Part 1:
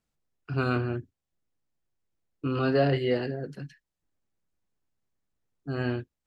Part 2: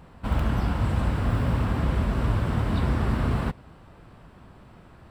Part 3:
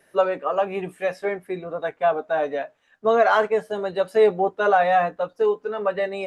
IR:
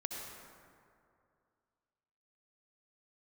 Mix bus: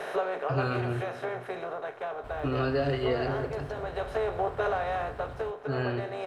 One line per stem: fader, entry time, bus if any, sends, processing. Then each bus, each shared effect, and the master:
-1.0 dB, 0.00 s, send -7 dB, compression, threshold -25 dBFS, peak gain reduction 7 dB
-17.0 dB, 2.00 s, no send, peak limiter -17 dBFS, peak gain reduction 5.5 dB
-2.5 dB, 0.00 s, no send, spectral levelling over time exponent 0.4; compression 6:1, threshold -23 dBFS, peak gain reduction 13.5 dB; three bands expanded up and down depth 70%; auto duck -7 dB, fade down 1.10 s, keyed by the first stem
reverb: on, RT60 2.4 s, pre-delay 58 ms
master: peaking EQ 210 Hz -12 dB 0.35 oct

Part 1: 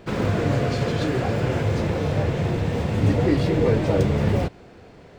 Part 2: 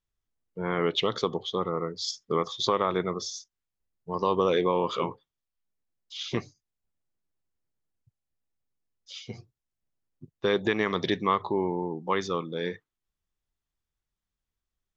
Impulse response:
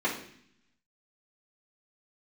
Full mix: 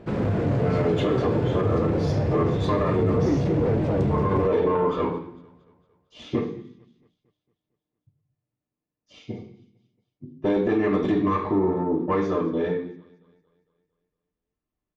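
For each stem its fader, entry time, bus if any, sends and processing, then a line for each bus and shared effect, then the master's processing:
-2.5 dB, 0.00 s, no send, echo send -17 dB, saturation -18 dBFS, distortion -13 dB
-1.0 dB, 0.00 s, send -3.5 dB, echo send -19.5 dB, comb 6.7 ms, depth 35%; valve stage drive 22 dB, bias 0.65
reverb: on, RT60 0.60 s, pre-delay 3 ms
echo: feedback delay 228 ms, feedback 52%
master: high-pass 240 Hz 6 dB/octave; tilt EQ -3.5 dB/octave; peak limiter -13.5 dBFS, peak gain reduction 8 dB

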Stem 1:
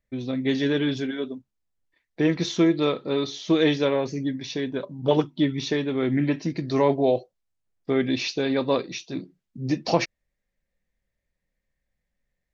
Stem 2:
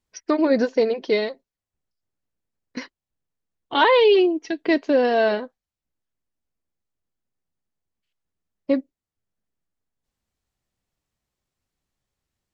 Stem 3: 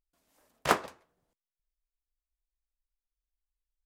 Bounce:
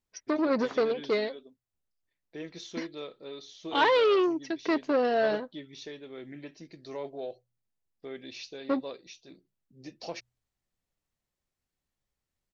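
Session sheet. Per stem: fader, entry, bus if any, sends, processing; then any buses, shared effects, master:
-12.5 dB, 0.15 s, no send, ten-band graphic EQ 125 Hz -11 dB, 250 Hz -8 dB, 1 kHz -6 dB, 2 kHz -3 dB
-5.5 dB, 0.00 s, no send, none
-13.0 dB, 0.00 s, no send, elliptic low-pass 3.9 kHz; auto duck -17 dB, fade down 1.80 s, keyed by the second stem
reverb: none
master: de-hum 60.86 Hz, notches 2; transformer saturation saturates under 940 Hz

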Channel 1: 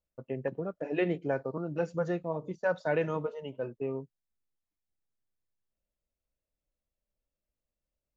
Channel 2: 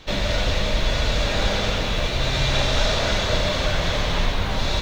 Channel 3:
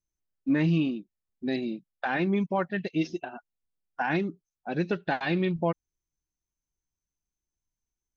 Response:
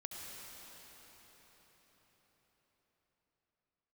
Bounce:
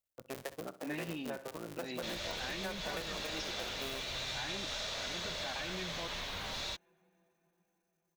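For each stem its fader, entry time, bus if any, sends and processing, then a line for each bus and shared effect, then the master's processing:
-3.0 dB, 0.00 s, no send, echo send -16 dB, cycle switcher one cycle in 3, muted
-13.0 dB, 1.95 s, no send, no echo send, none
-8.0 dB, 0.35 s, send -20.5 dB, no echo send, transient shaper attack -10 dB, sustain +9 dB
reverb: on, RT60 5.4 s, pre-delay 63 ms
echo: feedback delay 63 ms, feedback 42%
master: tilt EQ +2.5 dB/octave; compression, threshold -36 dBFS, peak gain reduction 9.5 dB

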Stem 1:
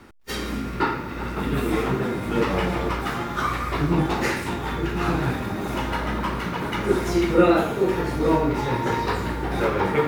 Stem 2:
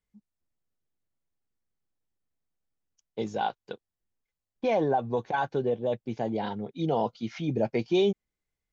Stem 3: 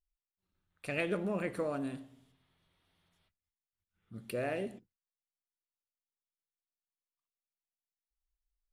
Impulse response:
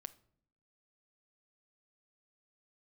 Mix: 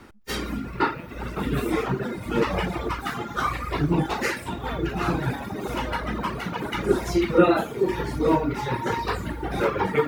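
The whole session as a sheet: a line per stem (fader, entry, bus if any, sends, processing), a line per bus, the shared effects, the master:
-1.0 dB, 0.00 s, send -9 dB, reverb removal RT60 1.7 s
-7.0 dB, 0.00 s, no send, peak limiter -23 dBFS, peak gain reduction 8 dB
-12.0 dB, 0.00 s, no send, none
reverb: on, RT60 0.60 s, pre-delay 6 ms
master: none

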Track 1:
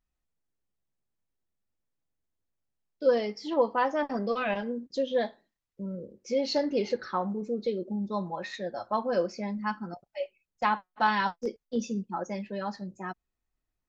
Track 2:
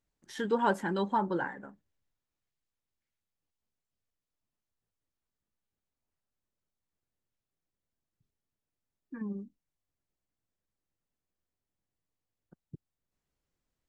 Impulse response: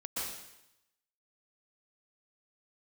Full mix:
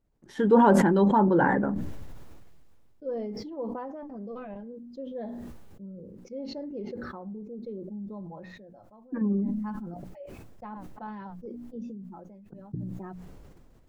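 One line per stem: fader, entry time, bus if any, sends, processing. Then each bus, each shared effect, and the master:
-20.0 dB, 0.00 s, no send, tilt EQ -2.5 dB/octave; auto duck -16 dB, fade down 0.80 s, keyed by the second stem
+2.5 dB, 0.00 s, no send, none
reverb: none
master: tilt shelf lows +8.5 dB, about 1.3 kHz; hum notches 60/120/180/240/300 Hz; decay stretcher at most 24 dB/s

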